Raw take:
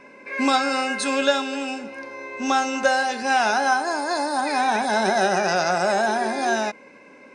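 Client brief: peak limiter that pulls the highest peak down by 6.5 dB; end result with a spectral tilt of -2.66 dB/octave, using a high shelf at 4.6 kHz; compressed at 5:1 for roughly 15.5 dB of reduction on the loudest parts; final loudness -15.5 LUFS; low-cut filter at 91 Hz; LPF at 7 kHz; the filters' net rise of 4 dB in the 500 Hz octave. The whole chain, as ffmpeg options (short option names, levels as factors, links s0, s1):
-af "highpass=91,lowpass=7000,equalizer=f=500:t=o:g=5,highshelf=f=4600:g=4.5,acompressor=threshold=0.0355:ratio=5,volume=7.5,alimiter=limit=0.473:level=0:latency=1"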